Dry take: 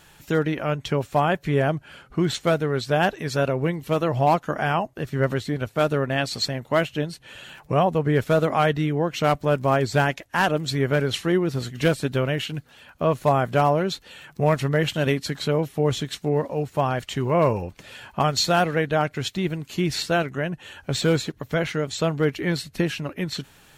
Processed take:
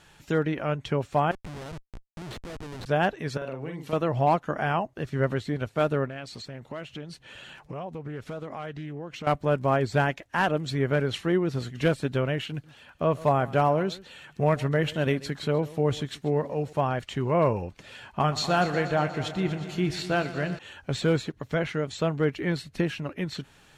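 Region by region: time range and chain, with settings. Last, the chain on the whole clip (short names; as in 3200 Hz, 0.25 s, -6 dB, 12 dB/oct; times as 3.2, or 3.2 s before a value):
1.31–2.86 compressor 2:1, threshold -38 dBFS + Schmitt trigger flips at -35.5 dBFS
3.37–3.93 HPF 140 Hz + compressor 5:1, threshold -29 dBFS + doubler 45 ms -4.5 dB
6.06–9.27 compressor 4:1, threshold -32 dBFS + Doppler distortion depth 0.18 ms
12.5–16.73 high shelf 12000 Hz +4.5 dB + echo 0.135 s -19.5 dB
18.11–20.59 bell 530 Hz -3.5 dB 0.3 oct + doubler 27 ms -12 dB + multi-head echo 0.12 s, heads first and second, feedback 64%, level -16 dB
whole clip: Bessel low-pass 7800 Hz, order 2; dynamic EQ 5600 Hz, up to -5 dB, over -41 dBFS, Q 0.74; gain -3 dB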